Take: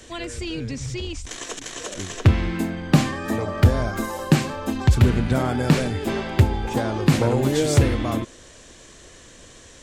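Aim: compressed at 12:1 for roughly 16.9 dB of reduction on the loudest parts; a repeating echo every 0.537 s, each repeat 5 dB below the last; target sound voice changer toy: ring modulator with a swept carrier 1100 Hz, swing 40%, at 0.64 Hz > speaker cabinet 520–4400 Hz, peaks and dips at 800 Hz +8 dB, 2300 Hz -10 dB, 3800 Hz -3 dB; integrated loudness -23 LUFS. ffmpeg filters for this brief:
-af "acompressor=threshold=-27dB:ratio=12,aecho=1:1:537|1074|1611|2148|2685|3222|3759:0.562|0.315|0.176|0.0988|0.0553|0.031|0.0173,aeval=exprs='val(0)*sin(2*PI*1100*n/s+1100*0.4/0.64*sin(2*PI*0.64*n/s))':c=same,highpass=520,equalizer=f=800:t=q:w=4:g=8,equalizer=f=2.3k:t=q:w=4:g=-10,equalizer=f=3.8k:t=q:w=4:g=-3,lowpass=f=4.4k:w=0.5412,lowpass=f=4.4k:w=1.3066,volume=9.5dB"

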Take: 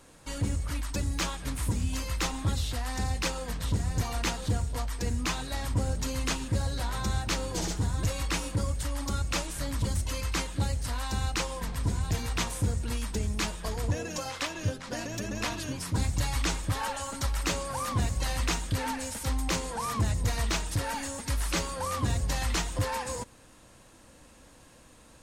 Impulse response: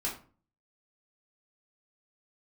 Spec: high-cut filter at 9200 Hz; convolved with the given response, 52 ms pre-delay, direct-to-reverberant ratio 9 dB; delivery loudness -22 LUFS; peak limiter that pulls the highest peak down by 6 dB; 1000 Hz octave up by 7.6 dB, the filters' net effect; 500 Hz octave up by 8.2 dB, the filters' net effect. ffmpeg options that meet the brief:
-filter_complex "[0:a]lowpass=9.2k,equalizer=f=500:t=o:g=7.5,equalizer=f=1k:t=o:g=7,alimiter=limit=-18dB:level=0:latency=1,asplit=2[a][b];[1:a]atrim=start_sample=2205,adelay=52[c];[b][c]afir=irnorm=-1:irlink=0,volume=-13dB[d];[a][d]amix=inputs=2:normalize=0,volume=7dB"

